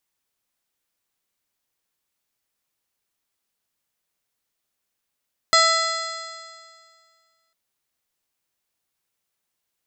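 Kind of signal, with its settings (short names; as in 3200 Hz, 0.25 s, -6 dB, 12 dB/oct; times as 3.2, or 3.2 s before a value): stretched partials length 2.00 s, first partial 653 Hz, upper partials 5.5/1.5/-18/-4/3/-0.5/-13.5/-7/-3.5 dB, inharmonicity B 0.0037, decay 2.00 s, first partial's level -21 dB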